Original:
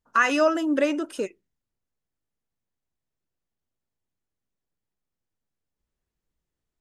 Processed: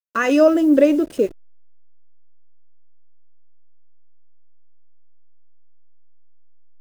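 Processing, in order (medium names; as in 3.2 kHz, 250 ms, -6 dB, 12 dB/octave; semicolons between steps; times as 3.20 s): send-on-delta sampling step -40.5 dBFS; resonant low shelf 710 Hz +8.5 dB, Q 1.5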